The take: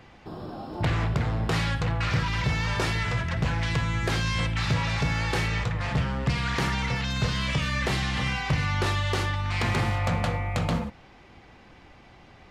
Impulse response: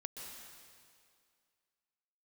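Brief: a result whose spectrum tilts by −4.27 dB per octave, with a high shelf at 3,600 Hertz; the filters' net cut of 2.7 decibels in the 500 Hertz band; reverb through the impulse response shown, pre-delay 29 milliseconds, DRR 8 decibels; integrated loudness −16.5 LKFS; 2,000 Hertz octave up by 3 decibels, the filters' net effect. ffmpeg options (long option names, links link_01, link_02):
-filter_complex "[0:a]equalizer=frequency=500:width_type=o:gain=-3.5,equalizer=frequency=2000:width_type=o:gain=6,highshelf=frequency=3600:gain=-8.5,asplit=2[link_01][link_02];[1:a]atrim=start_sample=2205,adelay=29[link_03];[link_02][link_03]afir=irnorm=-1:irlink=0,volume=-6dB[link_04];[link_01][link_04]amix=inputs=2:normalize=0,volume=9dB"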